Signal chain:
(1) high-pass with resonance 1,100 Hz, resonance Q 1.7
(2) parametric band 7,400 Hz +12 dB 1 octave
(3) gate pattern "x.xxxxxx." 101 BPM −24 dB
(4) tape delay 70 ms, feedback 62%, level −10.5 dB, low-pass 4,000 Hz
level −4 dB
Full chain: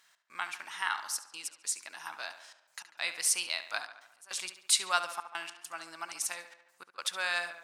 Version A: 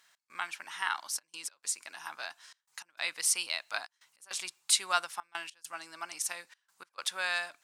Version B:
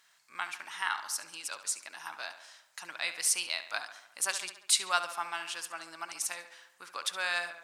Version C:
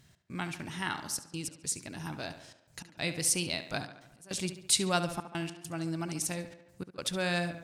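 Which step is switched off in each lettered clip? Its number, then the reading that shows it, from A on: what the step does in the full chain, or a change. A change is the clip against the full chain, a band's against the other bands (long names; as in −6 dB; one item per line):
4, echo-to-direct ratio −13.0 dB to none audible
3, change in momentary loudness spread −2 LU
1, 250 Hz band +24.5 dB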